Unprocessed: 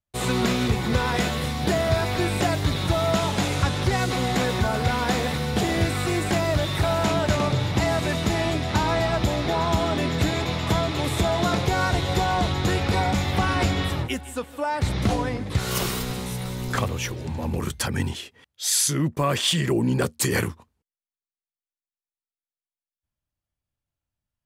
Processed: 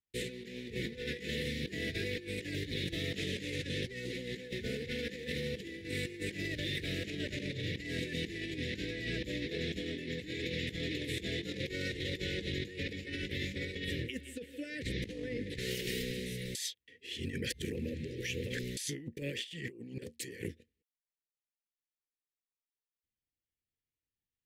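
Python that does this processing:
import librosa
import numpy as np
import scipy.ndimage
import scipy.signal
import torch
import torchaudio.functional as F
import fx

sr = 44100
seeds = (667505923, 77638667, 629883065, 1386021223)

y = fx.edit(x, sr, fx.reverse_span(start_s=12.93, length_s=0.82),
    fx.reverse_span(start_s=16.55, length_s=2.22), tone=tone)
y = scipy.signal.sosfilt(scipy.signal.cheby1(4, 1.0, [500.0, 1800.0], 'bandstop', fs=sr, output='sos'), y)
y = fx.bass_treble(y, sr, bass_db=-10, treble_db=-10)
y = fx.over_compress(y, sr, threshold_db=-33.0, ratio=-0.5)
y = y * 10.0 ** (-5.0 / 20.0)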